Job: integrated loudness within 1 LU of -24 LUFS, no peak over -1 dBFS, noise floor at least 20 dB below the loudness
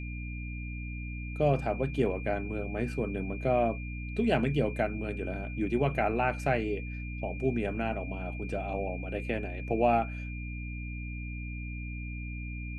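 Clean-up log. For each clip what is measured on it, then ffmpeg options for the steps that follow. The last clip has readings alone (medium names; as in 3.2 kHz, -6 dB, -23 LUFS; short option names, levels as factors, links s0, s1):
hum 60 Hz; highest harmonic 300 Hz; hum level -35 dBFS; steady tone 2.4 kHz; tone level -44 dBFS; loudness -32.0 LUFS; peak level -14.0 dBFS; loudness target -24.0 LUFS
-> -af "bandreject=f=60:t=h:w=6,bandreject=f=120:t=h:w=6,bandreject=f=180:t=h:w=6,bandreject=f=240:t=h:w=6,bandreject=f=300:t=h:w=6"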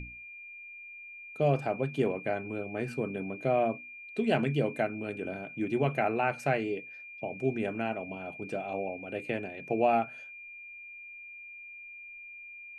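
hum not found; steady tone 2.4 kHz; tone level -44 dBFS
-> -af "bandreject=f=2400:w=30"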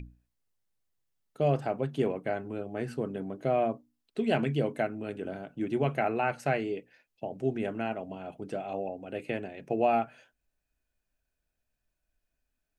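steady tone not found; loudness -32.0 LUFS; peak level -14.0 dBFS; loudness target -24.0 LUFS
-> -af "volume=2.51"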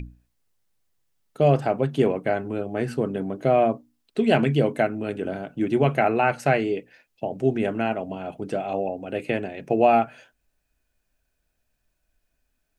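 loudness -24.0 LUFS; peak level -6.0 dBFS; noise floor -75 dBFS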